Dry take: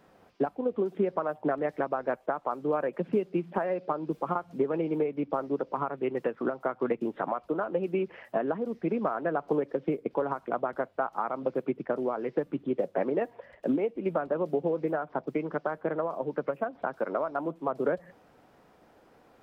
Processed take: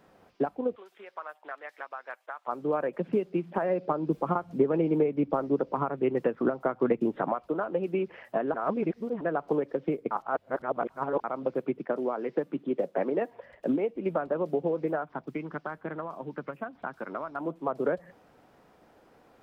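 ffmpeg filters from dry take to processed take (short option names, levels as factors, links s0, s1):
-filter_complex "[0:a]asplit=3[s0][s1][s2];[s0]afade=t=out:st=0.75:d=0.02[s3];[s1]highpass=1400,afade=t=in:st=0.75:d=0.02,afade=t=out:st=2.47:d=0.02[s4];[s2]afade=t=in:st=2.47:d=0.02[s5];[s3][s4][s5]amix=inputs=3:normalize=0,asettb=1/sr,asplit=3[s6][s7][s8];[s6]atrim=end=3.624[s9];[s7]atrim=start=3.62:end=7.35,asetpts=PTS-STARTPTS,afade=t=in:d=0.004:c=qsin,afade=t=out:st=3.726:d=0.004:c=qsin,lowshelf=f=420:g=6.5[s10];[s8]atrim=start=7.346[s11];[s9][s10]acrossfade=d=0.004:c1=hsin:c2=qsin[s12];[s12][s11]acrossfade=d=0.004:c1=qsin:c2=hsin,asettb=1/sr,asplit=3[s13][s14][s15];[s13]atrim=end=11.794[s16];[s14]atrim=start=11.79:end=13.32,asetpts=PTS-STARTPTS,afade=t=in:d=0.004:c=qsin,afade=t=out:st=1.526:d=0.004:c=qsin,highpass=f=150:w=0.5412,highpass=f=150:w=1.3066[s17];[s15]atrim=start=13.316[s18];[s16][s17]acrossfade=d=0.004:c1=hsin:c2=qsin[s19];[s19][s18]acrossfade=d=0.004:c1=qsin:c2=hsin,asettb=1/sr,asplit=3[s20][s21][s22];[s20]atrim=end=15.044[s23];[s21]atrim=start=15.04:end=17.41,asetpts=PTS-STARTPTS,afade=t=in:d=0.004:c=qsin,afade=t=out:st=2.366:d=0.004:c=qsin,equalizer=f=530:w=1.2:g=-9.5[s24];[s22]atrim=start=17.406[s25];[s23][s24]acrossfade=d=0.004:c1=hsin:c2=qsin[s26];[s26][s25]acrossfade=d=0.004:c1=qsin:c2=hsin,asplit=5[s27][s28][s29][s30][s31];[s27]atrim=end=8.542[s32];[s28]atrim=start=8.538:end=9.212,asetpts=PTS-STARTPTS,areverse[s33];[s29]atrim=start=9.208:end=10.112[s34];[s30]atrim=start=10.108:end=11.242,asetpts=PTS-STARTPTS,areverse[s35];[s31]atrim=start=11.238[s36];[s32][s33]acrossfade=d=0.004:c1=hsin:c2=hsin[s37];[s37][s34]acrossfade=d=0.004:c1=hsin:c2=hsin[s38];[s38][s35]acrossfade=d=0.004:c1=hsin:c2=hsin[s39];[s39][s36]acrossfade=d=0.004:c1=hsin:c2=hsin"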